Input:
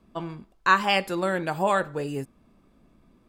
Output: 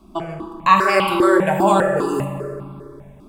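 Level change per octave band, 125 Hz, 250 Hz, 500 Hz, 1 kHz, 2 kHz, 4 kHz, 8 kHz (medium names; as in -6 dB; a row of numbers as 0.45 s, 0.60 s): +8.5 dB, +11.5 dB, +10.0 dB, +8.5 dB, +4.0 dB, +2.0 dB, +8.0 dB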